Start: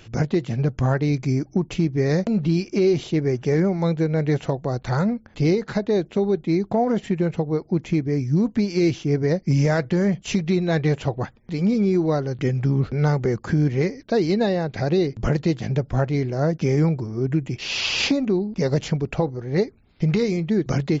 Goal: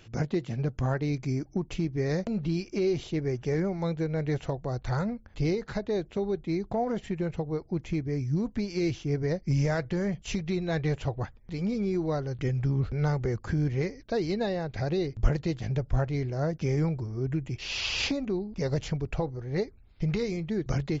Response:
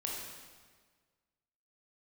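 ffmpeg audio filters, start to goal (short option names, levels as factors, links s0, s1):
-af "asubboost=boost=4.5:cutoff=85,volume=0.447"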